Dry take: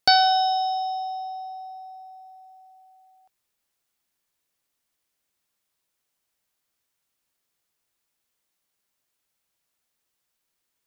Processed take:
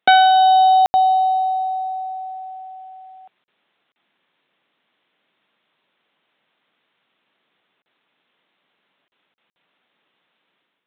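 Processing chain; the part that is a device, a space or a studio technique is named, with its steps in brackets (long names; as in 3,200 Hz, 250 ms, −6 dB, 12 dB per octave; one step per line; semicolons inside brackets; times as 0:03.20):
call with lost packets (high-pass filter 160 Hz 24 dB per octave; downsampling to 8,000 Hz; automatic gain control gain up to 9.5 dB; dropped packets bursts)
level +6.5 dB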